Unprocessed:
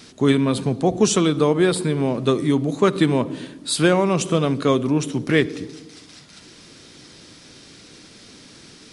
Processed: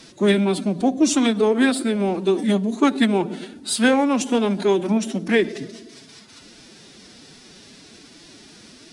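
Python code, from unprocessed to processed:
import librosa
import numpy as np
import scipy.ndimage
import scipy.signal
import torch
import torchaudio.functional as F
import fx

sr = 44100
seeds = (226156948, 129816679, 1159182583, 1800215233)

y = fx.pitch_keep_formants(x, sr, semitones=6.5)
y = fx.hum_notches(y, sr, base_hz=60, count=3)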